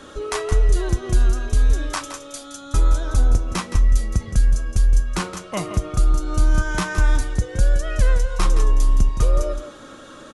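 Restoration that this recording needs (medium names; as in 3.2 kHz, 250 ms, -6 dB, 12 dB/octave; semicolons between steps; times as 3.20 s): inverse comb 168 ms -10.5 dB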